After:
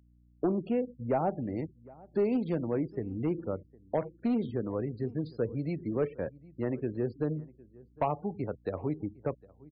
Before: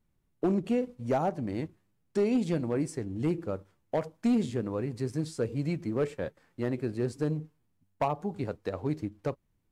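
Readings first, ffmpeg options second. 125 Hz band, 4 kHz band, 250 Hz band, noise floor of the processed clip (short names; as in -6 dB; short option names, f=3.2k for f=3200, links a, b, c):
-2.0 dB, under -10 dB, -2.0 dB, -62 dBFS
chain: -filter_complex "[0:a]aresample=11025,aresample=44100,afftfilt=real='re*gte(hypot(re,im),0.00708)':imag='im*gte(hypot(re,im),0.00708)':win_size=1024:overlap=0.75,aeval=exprs='val(0)+0.000891*(sin(2*PI*60*n/s)+sin(2*PI*2*60*n/s)/2+sin(2*PI*3*60*n/s)/3+sin(2*PI*4*60*n/s)/4+sin(2*PI*5*60*n/s)/5)':c=same,asplit=2[a][b];[b]adelay=758,volume=-23dB,highshelf=f=4k:g=-17.1[c];[a][c]amix=inputs=2:normalize=0,acrossover=split=280|3000[d][e][f];[d]acompressor=threshold=-34dB:ratio=3[g];[g][e][f]amix=inputs=3:normalize=0,highshelf=f=2.5k:g=-9.5"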